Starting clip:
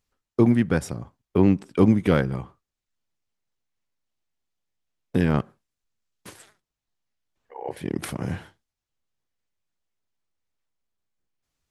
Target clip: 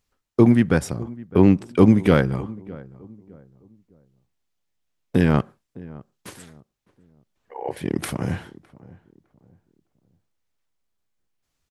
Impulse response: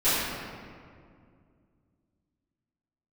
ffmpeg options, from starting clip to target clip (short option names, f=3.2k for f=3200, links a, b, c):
-filter_complex "[0:a]asplit=2[a][b];[b]adelay=609,lowpass=f=1k:p=1,volume=-20dB,asplit=2[c][d];[d]adelay=609,lowpass=f=1k:p=1,volume=0.34,asplit=2[e][f];[f]adelay=609,lowpass=f=1k:p=1,volume=0.34[g];[a][c][e][g]amix=inputs=4:normalize=0,volume=3.5dB"